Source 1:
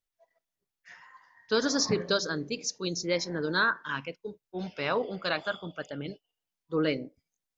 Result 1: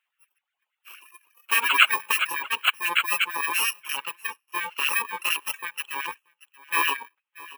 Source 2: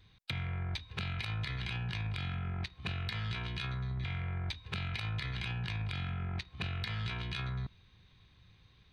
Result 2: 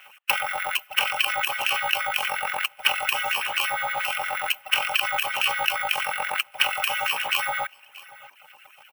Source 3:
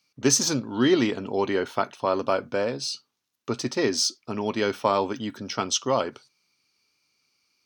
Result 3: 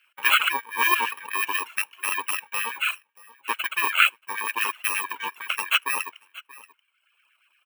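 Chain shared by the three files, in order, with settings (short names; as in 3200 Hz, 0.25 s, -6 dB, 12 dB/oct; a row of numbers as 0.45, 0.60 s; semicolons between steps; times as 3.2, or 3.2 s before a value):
FFT order left unsorted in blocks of 64 samples; resonant high shelf 3700 Hz -10 dB, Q 3; in parallel at -2 dB: compressor, threshold -37 dBFS; on the sum: LFO high-pass sine 8.5 Hz 820–1700 Hz; echo 0.631 s -19.5 dB; reverb removal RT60 0.95 s; match loudness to -24 LUFS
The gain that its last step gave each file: +7.0, +16.0, +2.5 dB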